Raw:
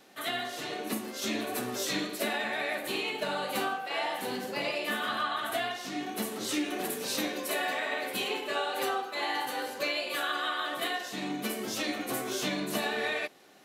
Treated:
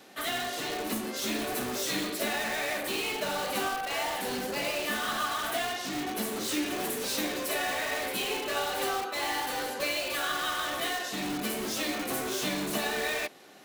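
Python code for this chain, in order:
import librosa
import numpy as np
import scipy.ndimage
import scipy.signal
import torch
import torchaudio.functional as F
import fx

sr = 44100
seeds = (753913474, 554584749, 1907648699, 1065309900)

p1 = scipy.signal.sosfilt(scipy.signal.butter(2, 54.0, 'highpass', fs=sr, output='sos'), x)
p2 = (np.mod(10.0 ** (31.5 / 20.0) * p1 + 1.0, 2.0) - 1.0) / 10.0 ** (31.5 / 20.0)
y = p1 + F.gain(torch.from_numpy(p2), -3.5).numpy()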